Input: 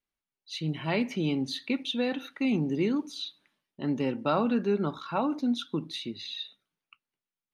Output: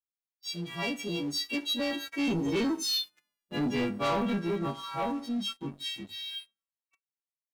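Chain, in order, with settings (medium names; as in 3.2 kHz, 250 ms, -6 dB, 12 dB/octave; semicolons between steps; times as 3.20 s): partials quantised in pitch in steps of 3 st; Doppler pass-by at 3.13 s, 35 m/s, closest 28 m; waveshaping leveller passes 3; trim -6 dB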